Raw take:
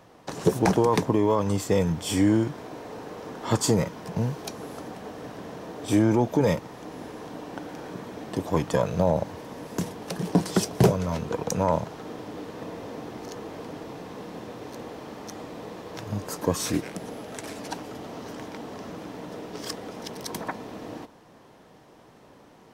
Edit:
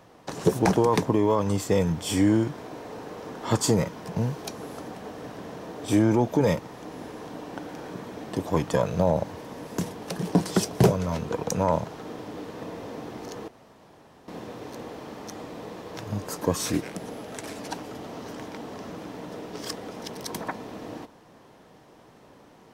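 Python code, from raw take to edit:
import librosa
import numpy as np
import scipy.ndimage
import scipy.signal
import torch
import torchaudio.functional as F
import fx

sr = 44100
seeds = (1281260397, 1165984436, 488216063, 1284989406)

y = fx.edit(x, sr, fx.room_tone_fill(start_s=13.48, length_s=0.8), tone=tone)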